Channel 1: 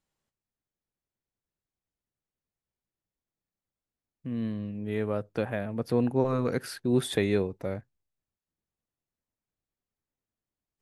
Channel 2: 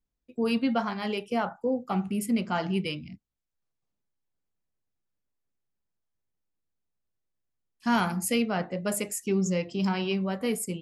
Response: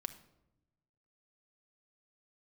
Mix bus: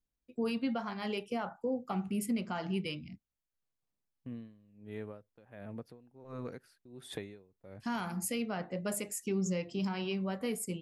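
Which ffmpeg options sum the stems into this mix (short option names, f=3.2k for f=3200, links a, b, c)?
-filter_complex "[0:a]agate=range=-17dB:threshold=-40dB:ratio=16:detection=peak,acompressor=threshold=-29dB:ratio=4,aeval=exprs='val(0)*pow(10,-21*(0.5-0.5*cos(2*PI*1.4*n/s))/20)':c=same,volume=-7.5dB[a];[1:a]volume=-4.5dB[b];[a][b]amix=inputs=2:normalize=0,alimiter=level_in=1dB:limit=-24dB:level=0:latency=1:release=224,volume=-1dB"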